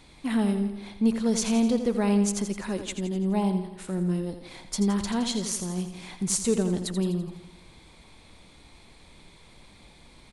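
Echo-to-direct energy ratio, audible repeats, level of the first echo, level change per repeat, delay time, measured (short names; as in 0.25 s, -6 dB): -8.0 dB, 6, -9.5 dB, -5.0 dB, 84 ms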